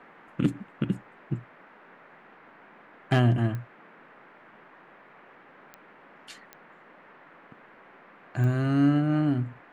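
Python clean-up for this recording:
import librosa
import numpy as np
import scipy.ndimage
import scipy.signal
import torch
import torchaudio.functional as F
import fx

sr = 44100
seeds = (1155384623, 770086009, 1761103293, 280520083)

y = fx.fix_declip(x, sr, threshold_db=-12.5)
y = fx.fix_declick_ar(y, sr, threshold=10.0)
y = fx.noise_reduce(y, sr, print_start_s=4.96, print_end_s=5.46, reduce_db=18.0)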